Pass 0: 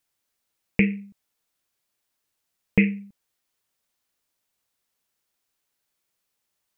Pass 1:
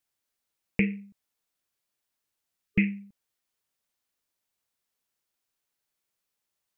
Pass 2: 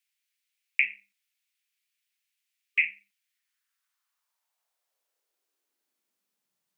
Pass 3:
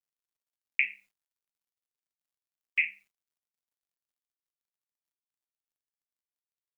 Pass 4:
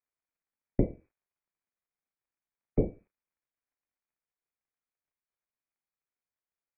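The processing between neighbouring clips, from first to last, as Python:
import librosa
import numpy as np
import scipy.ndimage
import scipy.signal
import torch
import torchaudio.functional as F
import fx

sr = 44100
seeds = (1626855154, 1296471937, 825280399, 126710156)

y1 = fx.spec_box(x, sr, start_s=2.67, length_s=0.36, low_hz=420.0, high_hz=1200.0, gain_db=-13)
y1 = F.gain(torch.from_numpy(y1), -5.0).numpy()
y2 = fx.filter_sweep_highpass(y1, sr, from_hz=2300.0, to_hz=160.0, start_s=3.18, end_s=6.59, q=2.5)
y3 = fx.quant_dither(y2, sr, seeds[0], bits=12, dither='none')
y3 = F.gain(torch.from_numpy(y3), -2.5).numpy()
y4 = fx.freq_invert(y3, sr, carrier_hz=2500)
y4 = F.gain(torch.from_numpy(y4), 2.5).numpy()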